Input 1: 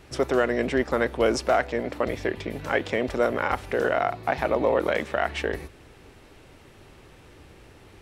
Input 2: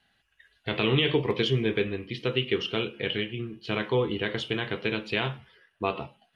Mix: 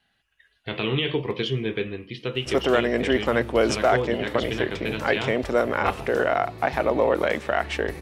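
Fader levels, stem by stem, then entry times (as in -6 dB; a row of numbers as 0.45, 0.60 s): +1.5, -1.0 dB; 2.35, 0.00 s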